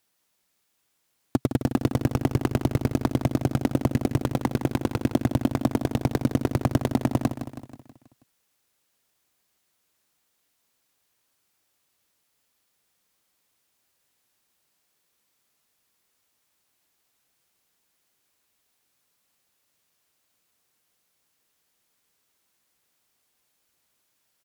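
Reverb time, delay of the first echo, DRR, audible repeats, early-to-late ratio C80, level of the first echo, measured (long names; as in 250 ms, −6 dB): no reverb audible, 161 ms, no reverb audible, 5, no reverb audible, −10.0 dB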